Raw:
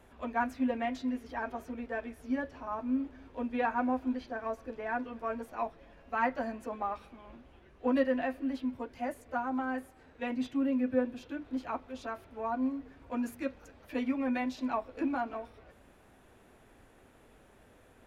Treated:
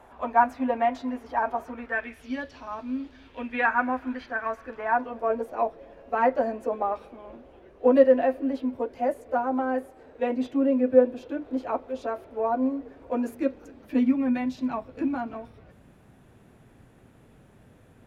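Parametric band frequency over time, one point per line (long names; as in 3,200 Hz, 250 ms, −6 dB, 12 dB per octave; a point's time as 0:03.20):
parametric band +13.5 dB 1.6 octaves
0:01.62 860 Hz
0:02.43 4,300 Hz
0:03.12 4,300 Hz
0:03.70 1,600 Hz
0:04.64 1,600 Hz
0:05.31 500 Hz
0:13.24 500 Hz
0:14.38 140 Hz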